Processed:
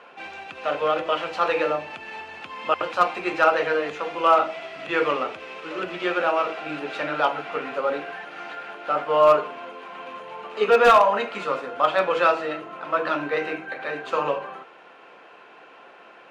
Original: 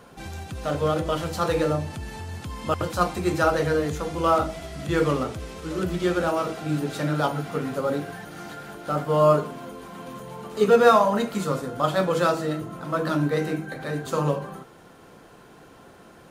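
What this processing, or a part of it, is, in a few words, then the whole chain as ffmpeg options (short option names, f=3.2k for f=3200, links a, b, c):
megaphone: -af "highpass=560,lowpass=2.7k,equalizer=f=2.6k:t=o:w=0.42:g=9.5,asoftclip=type=hard:threshold=-12.5dB,volume=4.5dB"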